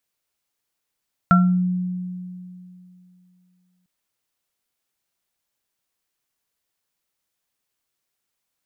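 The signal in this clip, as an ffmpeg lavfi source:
-f lavfi -i "aevalsrc='0.282*pow(10,-3*t/2.77)*sin(2*PI*181*t)+0.0891*pow(10,-3*t/0.34)*sin(2*PI*696*t)+0.299*pow(10,-3*t/0.31)*sin(2*PI*1360*t)':d=2.55:s=44100"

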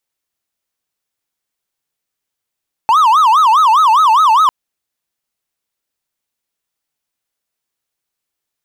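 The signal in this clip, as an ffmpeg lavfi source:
-f lavfi -i "aevalsrc='0.596*(1-4*abs(mod((1078.5*t-211.5/(2*PI*4.9)*sin(2*PI*4.9*t))+0.25,1)-0.5))':d=1.6:s=44100"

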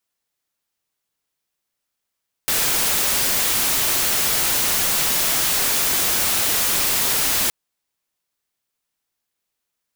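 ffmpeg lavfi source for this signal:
-f lavfi -i "anoisesrc=c=white:a=0.183:d=5.02:r=44100:seed=1"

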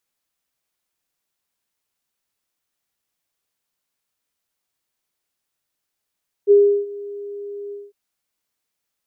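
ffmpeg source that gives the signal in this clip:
-f lavfi -i "aevalsrc='0.447*sin(2*PI*406*t)':d=1.452:s=44100,afade=t=in:d=0.04,afade=t=out:st=0.04:d=0.347:silence=0.0841,afade=t=out:st=1.25:d=0.202"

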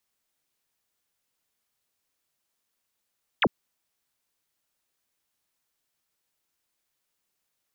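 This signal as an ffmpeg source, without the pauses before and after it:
-f lavfi -i "aevalsrc='0.133*clip(t/0.002,0,1)*clip((0.05-t)/0.002,0,1)*sin(2*PI*3900*0.05/log(140/3900)*(exp(log(140/3900)*t/0.05)-1))':d=0.05:s=44100"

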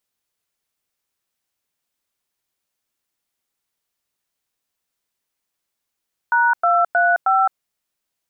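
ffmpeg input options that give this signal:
-f lavfi -i "aevalsrc='0.168*clip(min(mod(t,0.314),0.214-mod(t,0.314))/0.002,0,1)*(eq(floor(t/0.314),0)*(sin(2*PI*941*mod(t,0.314))+sin(2*PI*1477*mod(t,0.314)))+eq(floor(t/0.314),1)*(sin(2*PI*697*mod(t,0.314))+sin(2*PI*1336*mod(t,0.314)))+eq(floor(t/0.314),2)*(sin(2*PI*697*mod(t,0.314))+sin(2*PI*1477*mod(t,0.314)))+eq(floor(t/0.314),3)*(sin(2*PI*770*mod(t,0.314))+sin(2*PI*1336*mod(t,0.314))))':d=1.256:s=44100"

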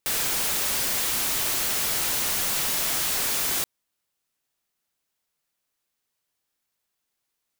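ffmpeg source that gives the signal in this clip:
-f lavfi -i "anoisesrc=c=white:a=0.0919:d=3.58:r=44100:seed=1"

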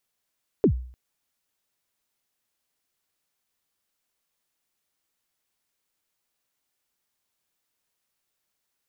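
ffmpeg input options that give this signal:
-f lavfi -i "aevalsrc='0.251*pow(10,-3*t/0.51)*sin(2*PI*(480*0.086/log(62/480)*(exp(log(62/480)*min(t,0.086)/0.086)-1)+62*max(t-0.086,0)))':d=0.3:s=44100"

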